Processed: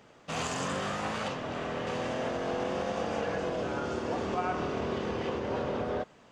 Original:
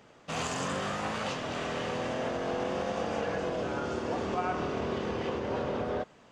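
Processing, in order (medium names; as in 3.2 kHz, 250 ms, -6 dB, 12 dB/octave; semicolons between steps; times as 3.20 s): 1.28–1.87 s: treble shelf 3 kHz -9 dB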